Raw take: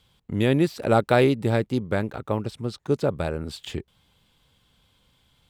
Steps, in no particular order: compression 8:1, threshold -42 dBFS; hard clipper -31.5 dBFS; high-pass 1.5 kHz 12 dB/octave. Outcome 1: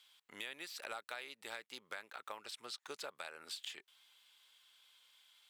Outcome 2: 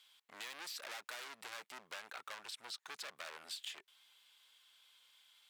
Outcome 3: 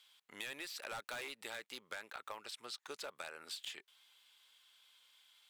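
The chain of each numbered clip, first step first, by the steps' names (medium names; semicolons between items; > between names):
high-pass > compression > hard clipper; hard clipper > high-pass > compression; high-pass > hard clipper > compression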